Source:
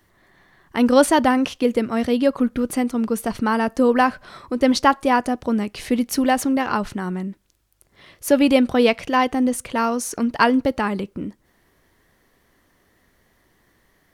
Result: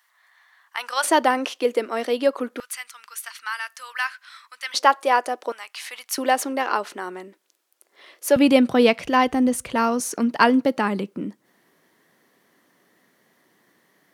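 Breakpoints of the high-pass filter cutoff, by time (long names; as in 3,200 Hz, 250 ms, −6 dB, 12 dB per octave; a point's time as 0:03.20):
high-pass filter 24 dB per octave
940 Hz
from 0:01.04 340 Hz
from 0:02.60 1,400 Hz
from 0:04.74 410 Hz
from 0:05.52 930 Hz
from 0:06.18 350 Hz
from 0:08.36 110 Hz
from 0:09.05 47 Hz
from 0:10.00 160 Hz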